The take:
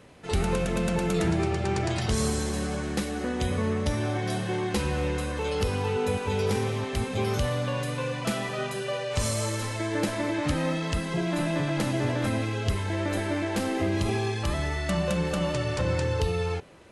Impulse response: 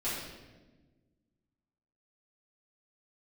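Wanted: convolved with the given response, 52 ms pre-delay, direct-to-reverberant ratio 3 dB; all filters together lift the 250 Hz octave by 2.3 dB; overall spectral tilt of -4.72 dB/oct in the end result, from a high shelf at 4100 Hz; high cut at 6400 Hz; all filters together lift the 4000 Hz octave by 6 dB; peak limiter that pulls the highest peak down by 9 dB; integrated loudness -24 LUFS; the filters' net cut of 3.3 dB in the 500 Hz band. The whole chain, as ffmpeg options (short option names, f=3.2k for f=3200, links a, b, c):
-filter_complex "[0:a]lowpass=6.4k,equalizer=f=250:t=o:g=5,equalizer=f=500:t=o:g=-6,equalizer=f=4k:t=o:g=4,highshelf=f=4.1k:g=7.5,alimiter=limit=-21dB:level=0:latency=1,asplit=2[a][b];[1:a]atrim=start_sample=2205,adelay=52[c];[b][c]afir=irnorm=-1:irlink=0,volume=-9dB[d];[a][d]amix=inputs=2:normalize=0,volume=4dB"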